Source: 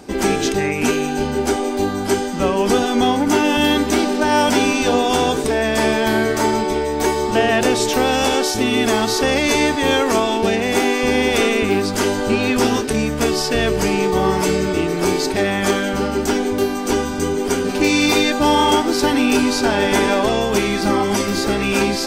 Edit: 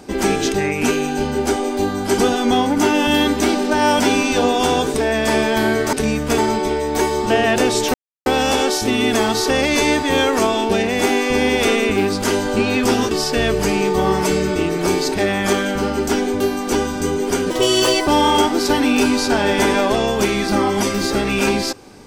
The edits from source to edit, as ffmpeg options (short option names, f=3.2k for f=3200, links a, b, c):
-filter_complex "[0:a]asplit=8[a][b][c][d][e][f][g][h];[a]atrim=end=2.182[i];[b]atrim=start=2.678:end=6.432[j];[c]atrim=start=12.838:end=13.292[k];[d]atrim=start=6.428:end=7.99,asetpts=PTS-STARTPTS,afade=t=out:st=1.558:d=0.004:c=hsin,apad=pad_dur=0.32[l];[e]atrim=start=7.99:end=12.842,asetpts=PTS-STARTPTS,afade=t=in:d=0.004:c=hsin[m];[f]atrim=start=13.288:end=17.684[n];[g]atrim=start=17.68:end=18.41,asetpts=PTS-STARTPTS,asetrate=56007,aresample=44100[o];[h]atrim=start=18.406[p];[i][j]acrossfade=d=0.004:c1=hsin:c2=hsin[q];[q][k]acrossfade=d=0.004:c1=hsin:c2=hsin[r];[l][m]concat=n=2:v=0:a=1[s];[r][s]acrossfade=d=0.004:c1=hsin:c2=hsin[t];[t][n]acrossfade=d=0.004:c1=hsin:c2=hsin[u];[u][o]acrossfade=d=0.004:c1=hsin:c2=hsin[v];[v][p]acrossfade=d=0.004:c1=hsin:c2=hsin"